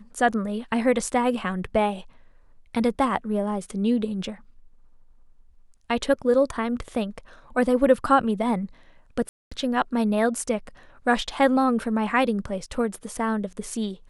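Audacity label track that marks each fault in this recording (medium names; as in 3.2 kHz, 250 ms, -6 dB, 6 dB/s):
9.290000	9.520000	dropout 225 ms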